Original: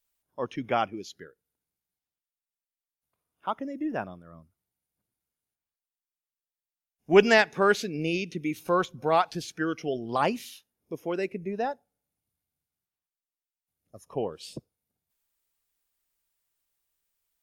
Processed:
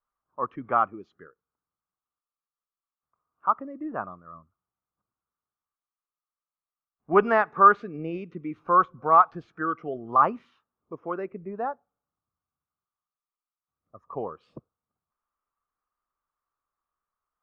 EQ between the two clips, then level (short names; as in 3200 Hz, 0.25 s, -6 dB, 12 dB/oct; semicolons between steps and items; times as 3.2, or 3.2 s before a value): synth low-pass 1200 Hz, resonance Q 8; -4.0 dB